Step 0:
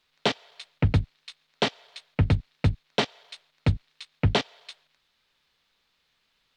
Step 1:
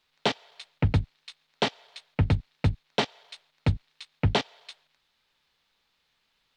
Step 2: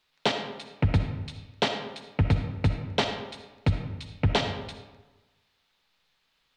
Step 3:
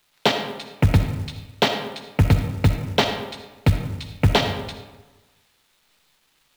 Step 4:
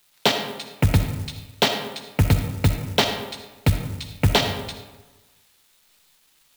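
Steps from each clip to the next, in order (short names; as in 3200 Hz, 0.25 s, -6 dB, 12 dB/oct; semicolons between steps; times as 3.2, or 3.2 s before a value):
bell 850 Hz +3.5 dB 0.29 oct; gain -1.5 dB
reverb RT60 1.2 s, pre-delay 20 ms, DRR 5.5 dB
companded quantiser 6-bit; gain +6.5 dB
high shelf 5400 Hz +10.5 dB; gain -1.5 dB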